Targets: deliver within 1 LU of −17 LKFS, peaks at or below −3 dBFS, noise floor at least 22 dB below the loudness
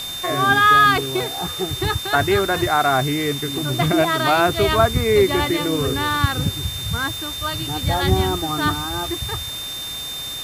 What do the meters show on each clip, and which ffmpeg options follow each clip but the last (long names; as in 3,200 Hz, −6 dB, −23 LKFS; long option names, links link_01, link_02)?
interfering tone 3,600 Hz; level of the tone −28 dBFS; background noise floor −30 dBFS; target noise floor −41 dBFS; integrated loudness −19.0 LKFS; sample peak −2.5 dBFS; target loudness −17.0 LKFS
→ -af "bandreject=frequency=3600:width=30"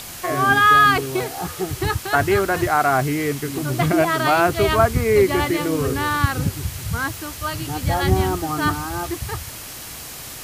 interfering tone none found; background noise floor −35 dBFS; target noise floor −42 dBFS
→ -af "afftdn=noise_reduction=7:noise_floor=-35"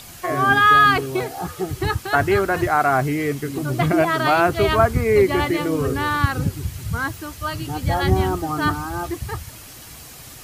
background noise floor −40 dBFS; target noise floor −42 dBFS
→ -af "afftdn=noise_reduction=6:noise_floor=-40"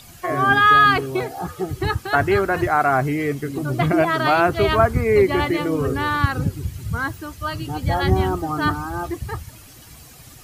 background noise floor −44 dBFS; integrated loudness −19.5 LKFS; sample peak −3.0 dBFS; target loudness −17.0 LKFS
→ -af "volume=2.5dB,alimiter=limit=-3dB:level=0:latency=1"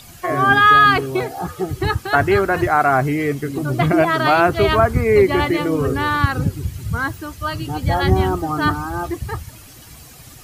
integrated loudness −17.5 LKFS; sample peak −3.0 dBFS; background noise floor −42 dBFS